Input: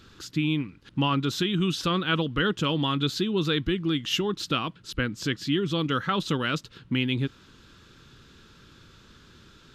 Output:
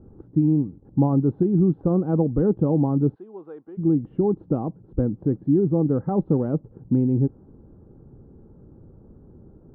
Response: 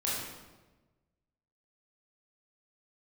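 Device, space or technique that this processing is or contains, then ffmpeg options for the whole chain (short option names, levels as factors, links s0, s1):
under water: -filter_complex "[0:a]lowpass=f=620:w=0.5412,lowpass=f=620:w=1.3066,equalizer=f=800:t=o:w=0.24:g=10,asplit=3[s0][s1][s2];[s0]afade=t=out:st=3.14:d=0.02[s3];[s1]highpass=1100,afade=t=in:st=3.14:d=0.02,afade=t=out:st=3.77:d=0.02[s4];[s2]afade=t=in:st=3.77:d=0.02[s5];[s3][s4][s5]amix=inputs=3:normalize=0,volume=2.24"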